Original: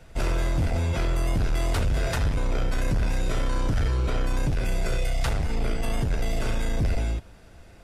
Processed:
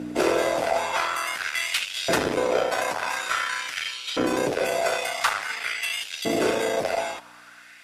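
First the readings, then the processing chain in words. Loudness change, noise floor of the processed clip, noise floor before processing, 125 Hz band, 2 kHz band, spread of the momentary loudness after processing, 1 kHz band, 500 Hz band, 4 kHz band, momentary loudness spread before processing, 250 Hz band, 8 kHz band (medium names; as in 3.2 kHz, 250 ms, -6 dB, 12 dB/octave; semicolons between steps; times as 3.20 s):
+2.5 dB, -48 dBFS, -48 dBFS, -17.5 dB, +9.5 dB, 4 LU, +9.0 dB, +8.5 dB, +9.5 dB, 3 LU, +1.5 dB, +7.5 dB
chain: hum 60 Hz, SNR 11 dB; LFO high-pass saw up 0.48 Hz 290–3700 Hz; Chebyshev shaper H 5 -29 dB, 6 -35 dB, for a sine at -14 dBFS; trim +6 dB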